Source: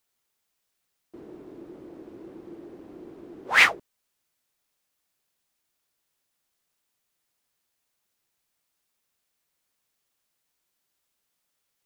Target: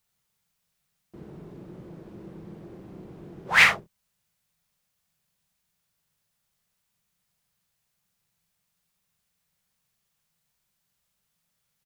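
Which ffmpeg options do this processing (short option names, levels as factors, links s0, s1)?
-af "lowshelf=f=220:t=q:w=3:g=7,aecho=1:1:43|67:0.447|0.2"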